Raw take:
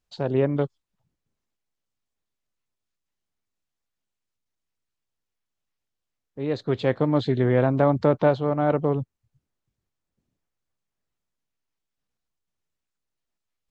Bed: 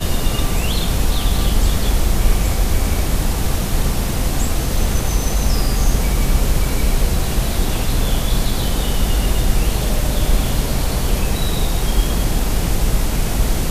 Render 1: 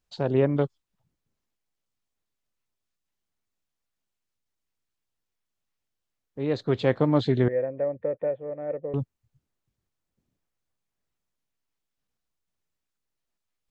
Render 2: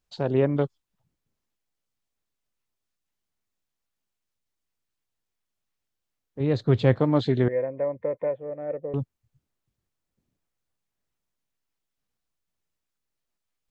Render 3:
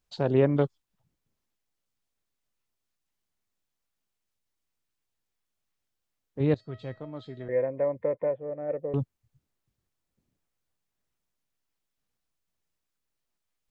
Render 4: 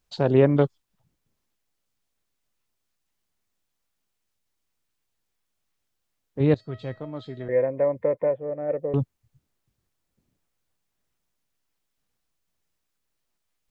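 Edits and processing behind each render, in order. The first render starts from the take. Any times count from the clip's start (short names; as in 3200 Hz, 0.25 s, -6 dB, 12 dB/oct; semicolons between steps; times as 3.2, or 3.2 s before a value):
7.48–8.94 vocal tract filter e
6.4–6.99 bell 97 Hz +11 dB 1.7 oct; 7.51–8.32 small resonant body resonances 1000/2100 Hz, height 12 dB -> 16 dB
6.54–7.49 resonator 640 Hz, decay 0.32 s, mix 90%; 8.14–8.69 air absorption 300 m
gain +4.5 dB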